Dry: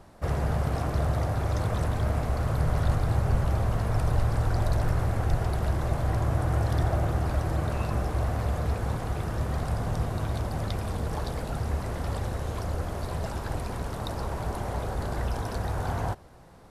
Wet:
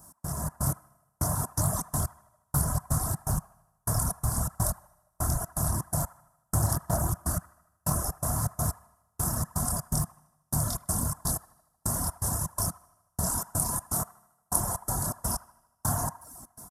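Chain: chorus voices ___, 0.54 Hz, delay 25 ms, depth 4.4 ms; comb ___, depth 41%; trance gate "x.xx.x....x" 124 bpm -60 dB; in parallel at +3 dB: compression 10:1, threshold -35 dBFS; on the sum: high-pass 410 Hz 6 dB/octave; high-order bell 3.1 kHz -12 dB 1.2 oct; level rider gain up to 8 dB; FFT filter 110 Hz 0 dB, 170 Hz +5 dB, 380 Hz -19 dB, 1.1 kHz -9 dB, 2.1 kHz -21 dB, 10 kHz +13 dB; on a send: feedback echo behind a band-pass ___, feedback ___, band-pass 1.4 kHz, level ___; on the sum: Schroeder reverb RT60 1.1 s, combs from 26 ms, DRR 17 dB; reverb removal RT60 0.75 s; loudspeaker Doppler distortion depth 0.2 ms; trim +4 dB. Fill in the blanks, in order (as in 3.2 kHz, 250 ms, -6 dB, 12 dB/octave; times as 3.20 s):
4, 3 ms, 77 ms, 58%, -6.5 dB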